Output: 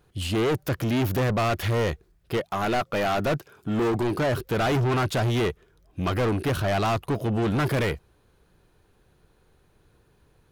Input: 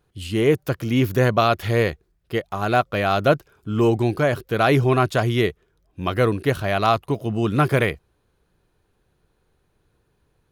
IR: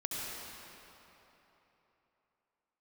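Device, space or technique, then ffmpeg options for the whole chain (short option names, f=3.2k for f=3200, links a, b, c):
saturation between pre-emphasis and de-emphasis: -filter_complex "[0:a]asettb=1/sr,asplit=3[a][b][c];[a]atrim=end=2.374[d];[b]atrim=start=2.37:end=4.18,asetpts=PTS-STARTPTS,afade=t=in:d=0.004:c=qsin,afade=t=out:st=1.806:d=0.004:c=qsin,highpass=120[e];[c]atrim=start=4.176[f];[d][e]acrossfade=d=0.004:c1=hsin:c2=qsin[g];[g][f]acrossfade=d=0.004:c1=qsin:c2=hsin,highshelf=f=4.9k:g=8.5,asoftclip=type=tanh:threshold=-26dB,highshelf=f=4.9k:g=-8.5,volume=5dB"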